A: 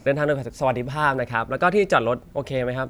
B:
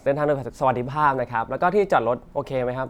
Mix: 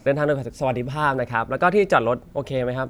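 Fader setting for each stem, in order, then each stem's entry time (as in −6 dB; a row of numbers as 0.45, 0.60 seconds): −1.5, −9.0 decibels; 0.00, 0.00 seconds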